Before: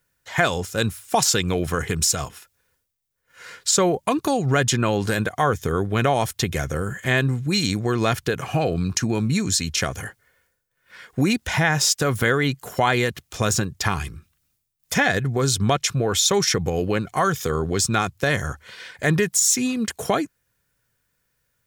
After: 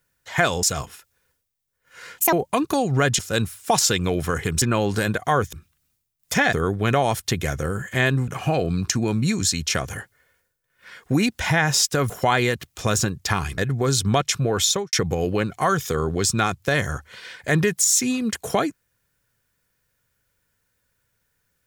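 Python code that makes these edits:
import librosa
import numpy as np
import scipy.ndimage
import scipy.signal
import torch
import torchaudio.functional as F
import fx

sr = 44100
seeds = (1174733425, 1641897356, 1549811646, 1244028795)

y = fx.studio_fade_out(x, sr, start_s=16.22, length_s=0.26)
y = fx.edit(y, sr, fx.move(start_s=0.63, length_s=1.43, to_s=4.73),
    fx.speed_span(start_s=3.61, length_s=0.26, speed=1.76),
    fx.cut(start_s=7.39, length_s=0.96),
    fx.cut(start_s=12.17, length_s=0.48),
    fx.move(start_s=14.13, length_s=1.0, to_s=5.64), tone=tone)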